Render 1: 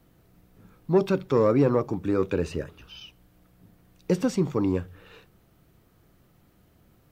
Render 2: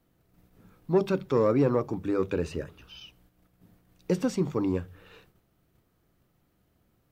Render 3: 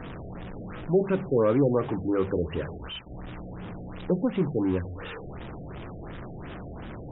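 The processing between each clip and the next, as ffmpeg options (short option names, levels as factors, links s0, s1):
-af "bandreject=f=50:t=h:w=6,bandreject=f=100:t=h:w=6,bandreject=f=150:t=h:w=6,bandreject=f=200:t=h:w=6,agate=range=0.501:threshold=0.00126:ratio=16:detection=peak,volume=0.75"
-af "aeval=exprs='val(0)+0.5*0.0251*sgn(val(0))':c=same,afftfilt=real='re*lt(b*sr/1024,750*pow(3900/750,0.5+0.5*sin(2*PI*2.8*pts/sr)))':imag='im*lt(b*sr/1024,750*pow(3900/750,0.5+0.5*sin(2*PI*2.8*pts/sr)))':win_size=1024:overlap=0.75"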